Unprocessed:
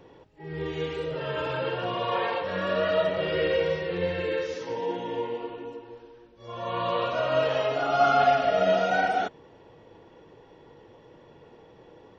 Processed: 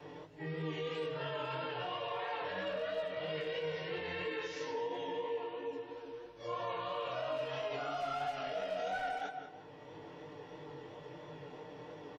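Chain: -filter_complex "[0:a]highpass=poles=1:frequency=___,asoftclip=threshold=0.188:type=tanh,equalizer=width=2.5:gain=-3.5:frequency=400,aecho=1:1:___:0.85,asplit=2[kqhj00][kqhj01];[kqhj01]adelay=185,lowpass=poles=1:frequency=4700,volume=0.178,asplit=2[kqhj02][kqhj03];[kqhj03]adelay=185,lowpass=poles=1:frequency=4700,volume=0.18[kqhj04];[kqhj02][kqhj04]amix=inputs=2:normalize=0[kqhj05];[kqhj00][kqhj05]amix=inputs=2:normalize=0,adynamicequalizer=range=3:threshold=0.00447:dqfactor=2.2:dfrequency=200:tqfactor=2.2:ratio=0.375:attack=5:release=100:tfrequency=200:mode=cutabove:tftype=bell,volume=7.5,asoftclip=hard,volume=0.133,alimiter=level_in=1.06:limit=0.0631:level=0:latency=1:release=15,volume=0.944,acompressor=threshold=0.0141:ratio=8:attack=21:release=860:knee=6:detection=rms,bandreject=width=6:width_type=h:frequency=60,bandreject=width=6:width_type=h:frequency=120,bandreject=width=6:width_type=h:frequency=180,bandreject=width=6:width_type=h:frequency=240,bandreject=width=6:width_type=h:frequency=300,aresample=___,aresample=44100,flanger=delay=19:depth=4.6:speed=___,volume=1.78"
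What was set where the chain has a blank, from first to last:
110, 6.7, 32000, 3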